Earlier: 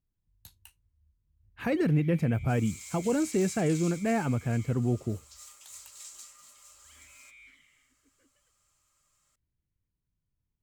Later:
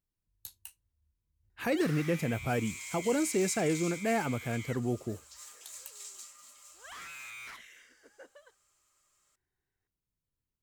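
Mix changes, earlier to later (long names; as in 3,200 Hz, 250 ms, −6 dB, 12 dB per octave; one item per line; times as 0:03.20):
speech: add bass and treble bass −8 dB, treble +8 dB
first sound: remove formant filter i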